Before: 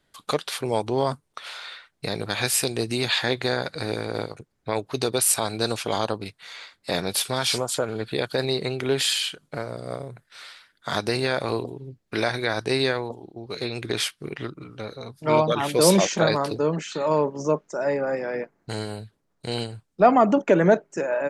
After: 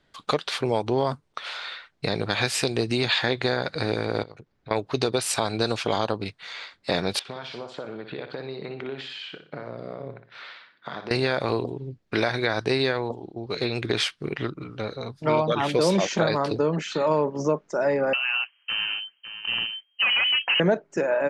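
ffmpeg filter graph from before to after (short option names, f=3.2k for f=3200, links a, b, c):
-filter_complex "[0:a]asettb=1/sr,asplit=3[a][b][c];[a]atrim=end=4.234[d];[b]atrim=start=4.23:end=4.71,asetpts=PTS-STARTPTS,afade=t=in:d=0.004:c=qsin,afade=t=out:st=0.476:d=0.004:c=qsin,lowpass=5.9k,acompressor=threshold=-45dB:ratio=3:attack=3.2:release=140:knee=1:detection=peak[e];[c]atrim=start=4.706[f];[d][e]acrossfade=d=0.004:c1=hsin:c2=qsin[g];[g][f]acrossfade=d=0.004:c1=qsin:c2=hsin,asettb=1/sr,asplit=3[h][i][j];[h]atrim=end=7.194[k];[i]atrim=start=7.19:end=11.11,asetpts=PTS-STARTPTS,afade=t=in:d=0.004:c=qsin,afade=t=out:st=3.916:d=0.004:c=qsin,acompressor=threshold=-33dB:ratio=8:attack=3.2:release=140:knee=1:detection=peak,highpass=150,lowpass=3.1k,aecho=1:1:60|120|180|240:0.355|0.128|0.046|0.0166,atrim=end_sample=172872[l];[j]atrim=start=11.106[m];[k][l]acrossfade=d=0.004:c1=hsin:c2=qsin[n];[n][m]acrossfade=d=0.004:c1=qsin:c2=hsin,asettb=1/sr,asplit=3[o][p][q];[o]atrim=end=18.134[r];[p]atrim=start=18.13:end=20.6,asetpts=PTS-STARTPTS,afade=t=in:d=0.004:c=qsin,afade=t=out:st=2.466:d=0.004:c=qsin,asoftclip=type=hard:threshold=-20.5dB,aecho=1:1:551:0.282,atrim=end_sample=108927,lowpass=f=2.7k:t=q:w=0.5098,lowpass=f=2.7k:t=q:w=0.6013,lowpass=f=2.7k:t=q:w=0.9,lowpass=f=2.7k:t=q:w=2.563,afreqshift=-3200[s];[q]atrim=start=20.596[t];[r][s]acrossfade=d=0.004:c1=hsin:c2=qsin[u];[u][t]acrossfade=d=0.004:c1=qsin:c2=hsin,lowpass=5.2k,acompressor=threshold=-23dB:ratio=3,volume=3.5dB"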